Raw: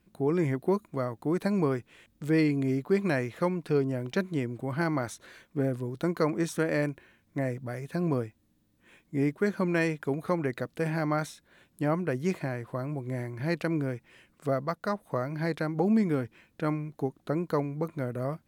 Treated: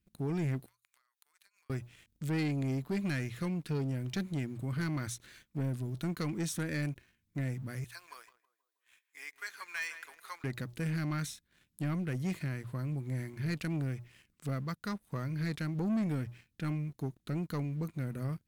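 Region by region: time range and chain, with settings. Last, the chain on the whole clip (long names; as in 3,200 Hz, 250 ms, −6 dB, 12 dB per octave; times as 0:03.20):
0:00.66–0:01.70: high-pass filter 1,200 Hz 24 dB per octave + downward compressor 12 to 1, threshold −56 dBFS
0:07.84–0:10.44: de-essing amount 80% + high-pass filter 860 Hz 24 dB per octave + feedback echo with a low-pass in the loop 160 ms, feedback 56%, low-pass 1,500 Hz, level −9.5 dB
whole clip: guitar amp tone stack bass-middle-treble 6-0-2; mains-hum notches 60/120 Hz; leveller curve on the samples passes 2; level +9 dB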